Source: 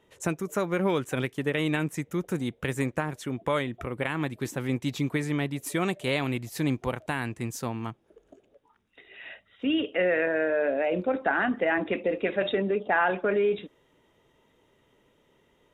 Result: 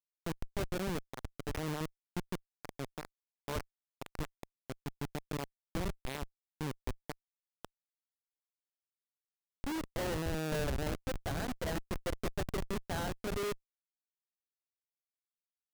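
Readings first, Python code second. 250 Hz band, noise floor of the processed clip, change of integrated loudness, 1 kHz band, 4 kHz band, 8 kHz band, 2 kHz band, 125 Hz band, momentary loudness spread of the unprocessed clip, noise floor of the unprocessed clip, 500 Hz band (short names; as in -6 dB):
-12.0 dB, under -85 dBFS, -11.5 dB, -12.0 dB, -8.5 dB, -6.0 dB, -15.5 dB, -8.0 dB, 8 LU, -67 dBFS, -13.5 dB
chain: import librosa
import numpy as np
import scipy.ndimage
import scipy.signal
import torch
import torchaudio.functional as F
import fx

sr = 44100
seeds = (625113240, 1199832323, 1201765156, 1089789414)

y = fx.schmitt(x, sr, flips_db=-22.0)
y = fx.tremolo_shape(y, sr, shape='triangle', hz=0.59, depth_pct=30)
y = y * 10.0 ** (-3.5 / 20.0)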